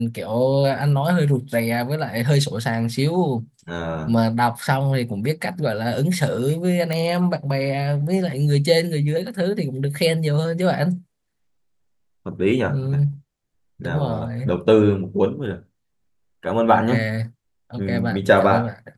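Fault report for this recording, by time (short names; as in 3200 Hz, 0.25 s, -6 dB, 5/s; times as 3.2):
6.93 pop -12 dBFS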